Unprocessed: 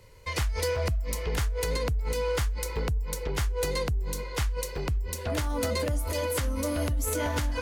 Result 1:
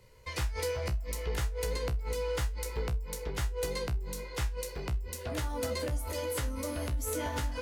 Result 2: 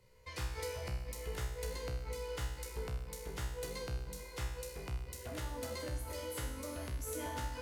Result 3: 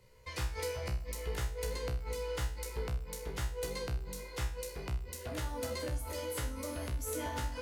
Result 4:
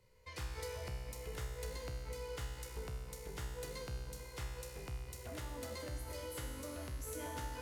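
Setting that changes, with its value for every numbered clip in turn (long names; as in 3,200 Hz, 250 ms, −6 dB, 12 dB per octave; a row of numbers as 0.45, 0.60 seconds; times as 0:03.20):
tuned comb filter, decay: 0.18, 0.87, 0.41, 2 seconds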